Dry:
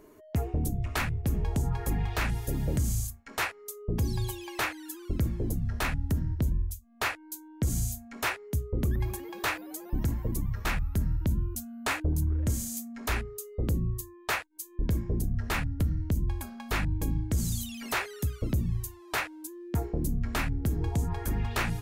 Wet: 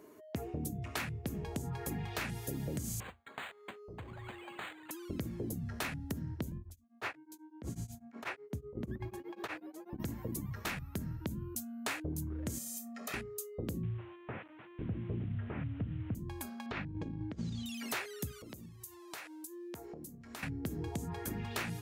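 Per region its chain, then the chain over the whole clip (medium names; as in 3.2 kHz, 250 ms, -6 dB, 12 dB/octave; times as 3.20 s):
3.00–4.91 s: peaking EQ 220 Hz -13.5 dB 1.6 oct + compression, threshold -34 dBFS + decimation joined by straight lines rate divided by 8×
6.58–10.00 s: low-pass 1.7 kHz 6 dB/octave + de-hum 142.8 Hz, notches 3 + tremolo of two beating tones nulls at 8.1 Hz
12.58–13.14 s: high-pass 170 Hz 24 dB/octave + compression 4:1, threshold -39 dBFS + comb 1.6 ms, depth 91%
13.83–16.15 s: one-bit delta coder 16 kbps, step -47 dBFS + peaking EQ 110 Hz +8 dB 0.62 oct
16.66–17.66 s: Bessel low-pass 2.8 kHz, order 4 + compressor with a negative ratio -30 dBFS, ratio -0.5
18.31–20.43 s: tone controls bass -5 dB, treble +5 dB + compression 16:1, threshold -40 dBFS
whole clip: high-pass 140 Hz 12 dB/octave; dynamic bell 1 kHz, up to -4 dB, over -46 dBFS, Q 0.89; compression 4:1, threshold -33 dBFS; trim -1.5 dB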